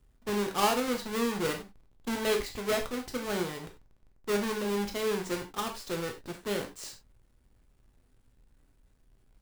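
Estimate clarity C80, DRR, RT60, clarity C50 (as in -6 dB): 15.5 dB, 3.0 dB, no single decay rate, 9.5 dB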